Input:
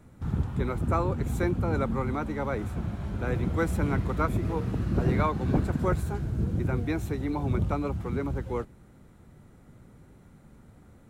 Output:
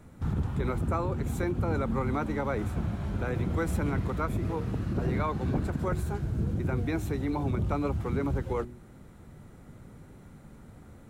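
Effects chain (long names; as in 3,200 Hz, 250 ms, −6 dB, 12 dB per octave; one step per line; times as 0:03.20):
speech leveller 2 s
brickwall limiter −20 dBFS, peak gain reduction 6 dB
hum removal 60.52 Hz, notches 6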